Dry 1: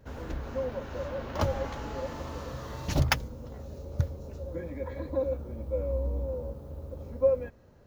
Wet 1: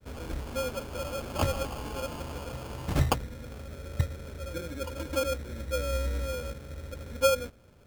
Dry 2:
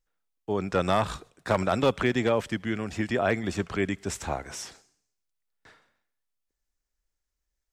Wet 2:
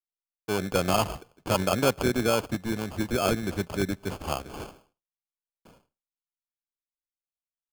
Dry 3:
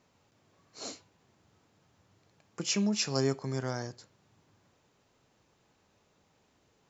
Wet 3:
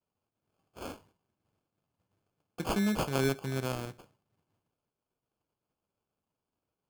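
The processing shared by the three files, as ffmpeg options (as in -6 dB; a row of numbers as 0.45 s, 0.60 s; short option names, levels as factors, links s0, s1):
-af "acrusher=samples=23:mix=1:aa=0.000001,agate=range=0.0224:threshold=0.00141:ratio=3:detection=peak"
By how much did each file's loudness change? +0.5 LU, 0.0 LU, +0.5 LU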